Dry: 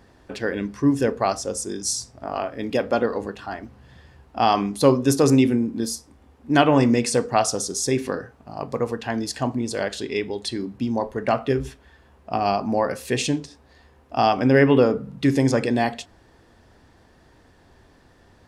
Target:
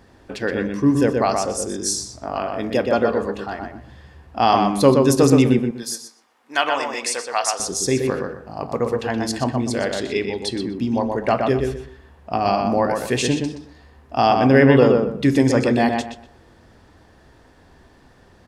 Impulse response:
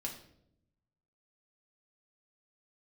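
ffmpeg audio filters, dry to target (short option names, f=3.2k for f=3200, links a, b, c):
-filter_complex "[0:a]asettb=1/sr,asplit=3[a][b][c];[a]atrim=end=5.584[d];[b]atrim=start=5.58:end=7.6,asetpts=PTS-STARTPTS,afade=t=in:d=0.004:c=qsin,afade=t=out:st=2.016:d=0.004:c=qsin,highpass=930[e];[c]atrim=start=7.596[f];[d][e]acrossfade=d=0.004:c1=hsin:c2=qsin[g];[g][f]acrossfade=d=0.004:c1=qsin:c2=hsin,asplit=2[h][i];[i]adelay=123,lowpass=f=2.7k:p=1,volume=-3.5dB,asplit=2[j][k];[k]adelay=123,lowpass=f=2.7k:p=1,volume=0.27,asplit=2[l][m];[m]adelay=123,lowpass=f=2.7k:p=1,volume=0.27,asplit=2[n][o];[o]adelay=123,lowpass=f=2.7k:p=1,volume=0.27[p];[h][j][l][n][p]amix=inputs=5:normalize=0,volume=2dB"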